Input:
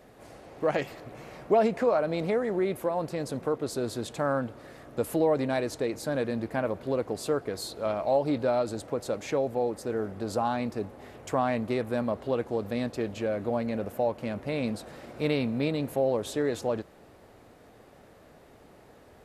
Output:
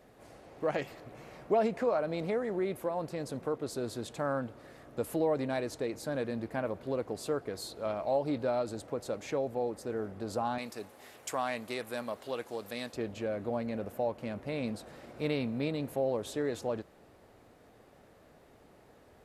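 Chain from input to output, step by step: 10.58–12.94 s: tilt EQ +3.5 dB/octave; trim -5 dB

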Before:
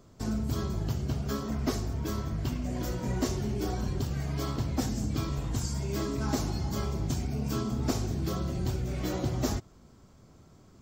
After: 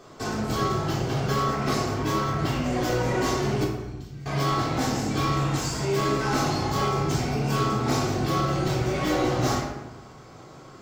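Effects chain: 3.64–4.26 s: amplifier tone stack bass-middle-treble 10-0-1; overdrive pedal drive 26 dB, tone 3.2 kHz, clips at -14 dBFS; reverberation RT60 1.0 s, pre-delay 3 ms, DRR -4.5 dB; trim -7 dB

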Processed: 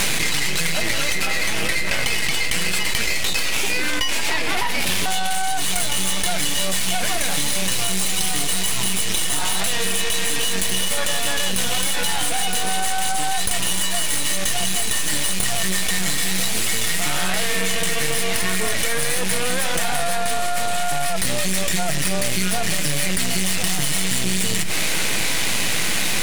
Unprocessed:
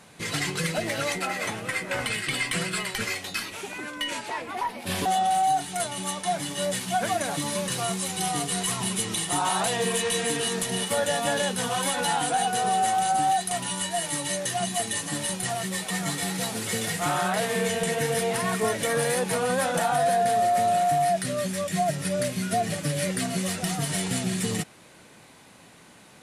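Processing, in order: resonant high shelf 1.6 kHz +8.5 dB, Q 1.5; half-wave rectifier; reverberation, pre-delay 6 ms, DRR 16 dB; level flattener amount 100%; trim -2.5 dB

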